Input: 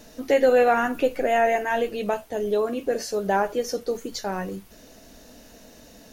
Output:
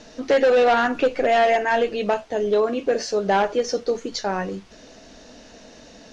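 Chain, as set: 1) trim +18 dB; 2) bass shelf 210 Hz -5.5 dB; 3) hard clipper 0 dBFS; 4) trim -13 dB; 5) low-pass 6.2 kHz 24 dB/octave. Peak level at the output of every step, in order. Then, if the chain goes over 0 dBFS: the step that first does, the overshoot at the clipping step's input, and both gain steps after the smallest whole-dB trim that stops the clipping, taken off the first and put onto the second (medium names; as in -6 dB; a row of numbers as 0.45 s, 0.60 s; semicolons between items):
+9.0 dBFS, +8.5 dBFS, 0.0 dBFS, -13.0 dBFS, -12.0 dBFS; step 1, 8.5 dB; step 1 +9 dB, step 4 -4 dB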